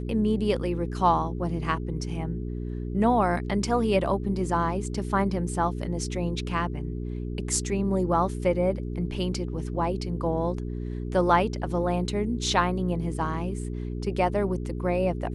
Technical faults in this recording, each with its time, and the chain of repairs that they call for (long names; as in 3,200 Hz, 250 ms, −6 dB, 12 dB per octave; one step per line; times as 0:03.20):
mains hum 60 Hz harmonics 7 −32 dBFS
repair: hum removal 60 Hz, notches 7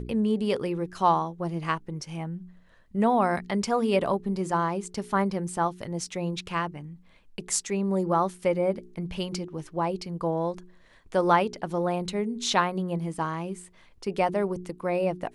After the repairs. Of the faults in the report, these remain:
none of them is left